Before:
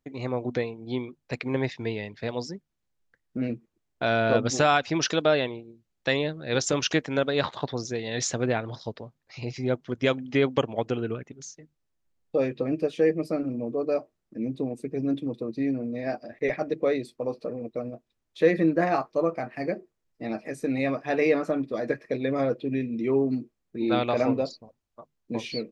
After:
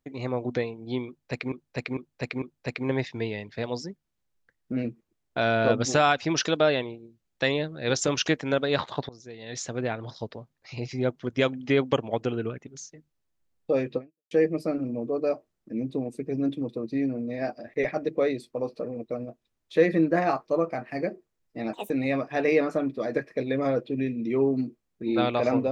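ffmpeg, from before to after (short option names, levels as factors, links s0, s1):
-filter_complex "[0:a]asplit=8[s0][s1][s2][s3][s4][s5][s6][s7];[s0]atrim=end=1.522[s8];[s1]atrim=start=1.068:end=1.522[s9];[s2]atrim=start=1.068:end=1.522[s10];[s3]atrim=start=1.068:end=7.74,asetpts=PTS-STARTPTS,afade=t=out:st=6.668:d=0.004:c=hsin:silence=0.0944061[s11];[s4]atrim=start=7.74:end=12.96,asetpts=PTS-STARTPTS,afade=t=in:d=1.21:silence=0.0944061,afade=t=out:st=4.88:d=0.34:c=exp[s12];[s5]atrim=start=12.96:end=20.384,asetpts=PTS-STARTPTS,afade=t=in:d=0.004:c=hsin[s13];[s6]atrim=start=20.38:end=20.64,asetpts=PTS-STARTPTS,asetrate=66591,aresample=44100,atrim=end_sample=7593,asetpts=PTS-STARTPTS[s14];[s7]atrim=start=20.636[s15];[s8][s9]acrossfade=d=0.004:c1=hsin:c2=hsin[s16];[s16][s10]acrossfade=d=0.004:c1=hsin:c2=hsin[s17];[s11][s12][s13]concat=n=3:v=0:a=1[s18];[s17][s18]acrossfade=d=0.004:c1=hsin:c2=hsin[s19];[s19][s14]acrossfade=d=0.004:c1=hsin:c2=hsin[s20];[s20][s15]acrossfade=d=0.004:c1=hsin:c2=hsin"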